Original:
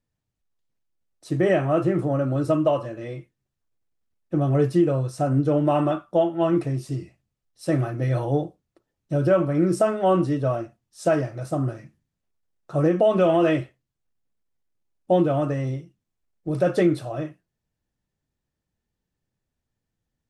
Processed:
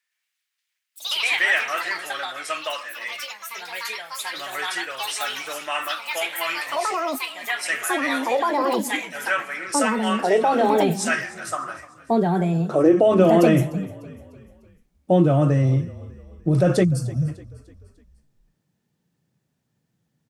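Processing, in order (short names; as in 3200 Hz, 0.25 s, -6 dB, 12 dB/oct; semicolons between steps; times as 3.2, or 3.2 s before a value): high-pass sweep 1900 Hz -> 150 Hz, 11.25–13.66; dynamic EQ 7500 Hz, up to +6 dB, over -52 dBFS, Q 1.2; in parallel at 0 dB: negative-ratio compressor -25 dBFS, ratio -1; on the sum: spectral gain 16.84–17.28, 260–4300 Hz -26 dB; echoes that change speed 0.115 s, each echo +4 st, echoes 3; on a send: frequency-shifting echo 0.299 s, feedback 48%, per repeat -30 Hz, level -19.5 dB; on the sum: gain -1.5 dB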